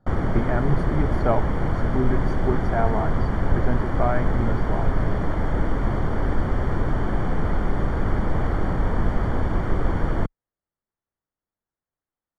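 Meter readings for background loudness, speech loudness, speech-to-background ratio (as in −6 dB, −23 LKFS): −25.5 LKFS, −28.0 LKFS, −2.5 dB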